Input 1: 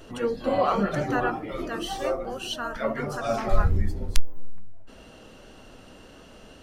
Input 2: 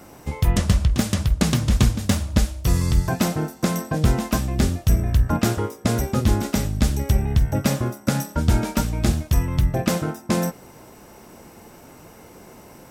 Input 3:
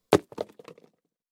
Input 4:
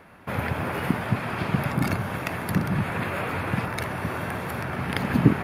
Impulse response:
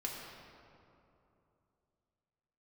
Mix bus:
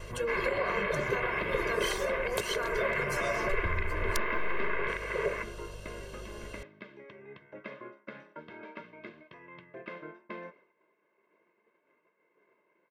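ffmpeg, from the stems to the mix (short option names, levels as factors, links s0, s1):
-filter_complex "[0:a]acompressor=threshold=0.0501:ratio=6,highshelf=f=5200:g=7.5,aeval=exprs='val(0)+0.00447*(sin(2*PI*50*n/s)+sin(2*PI*2*50*n/s)/2+sin(2*PI*3*50*n/s)/3+sin(2*PI*4*50*n/s)/4+sin(2*PI*5*50*n/s)/5)':c=same,volume=0.75,asplit=2[s0][s1];[1:a]lowpass=f=2200:p=1,acompressor=threshold=0.126:ratio=3,flanger=delay=3.3:depth=4.3:regen=83:speed=0.76:shape=triangular,volume=0.708[s2];[2:a]aexciter=amount=3.2:drive=4.4:freq=2300,adelay=2250,volume=0.316[s3];[3:a]acontrast=76,aeval=exprs='val(0)*sin(2*PI*280*n/s)':c=same,volume=0.422[s4];[s1]apad=whole_len=569131[s5];[s2][s5]sidechaingate=range=0.447:threshold=0.00631:ratio=16:detection=peak[s6];[s0][s3]amix=inputs=2:normalize=0,acompressor=threshold=0.0224:ratio=3,volume=1[s7];[s6][s4]amix=inputs=2:normalize=0,highpass=f=260:w=0.5412,highpass=f=260:w=1.3066,equalizer=f=290:t=q:w=4:g=3,equalizer=f=510:t=q:w=4:g=-7,equalizer=f=750:t=q:w=4:g=-8,equalizer=f=2100:t=q:w=4:g=7,lowpass=f=3100:w=0.5412,lowpass=f=3100:w=1.3066,alimiter=limit=0.0794:level=0:latency=1:release=405,volume=1[s8];[s7][s8]amix=inputs=2:normalize=0,agate=range=0.0224:threshold=0.00178:ratio=3:detection=peak,aecho=1:1:1.9:0.79"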